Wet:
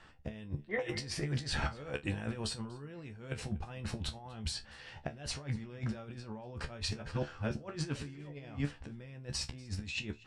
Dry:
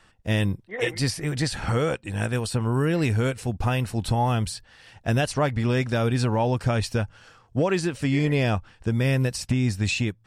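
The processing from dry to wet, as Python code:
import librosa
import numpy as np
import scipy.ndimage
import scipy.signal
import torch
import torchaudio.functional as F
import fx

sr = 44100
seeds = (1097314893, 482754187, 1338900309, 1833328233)

y = fx.reverse_delay(x, sr, ms=370, wet_db=-7.0, at=(6.49, 8.73))
y = fx.over_compress(y, sr, threshold_db=-30.0, ratio=-0.5)
y = fx.air_absorb(y, sr, metres=84.0)
y = fx.comb_fb(y, sr, f0_hz=72.0, decay_s=0.16, harmonics='all', damping=0.0, mix_pct=90)
y = y + 10.0 ** (-23.5 / 20.0) * np.pad(y, (int(241 * sr / 1000.0), 0))[:len(y)]
y = y * 10.0 ** (-2.0 / 20.0)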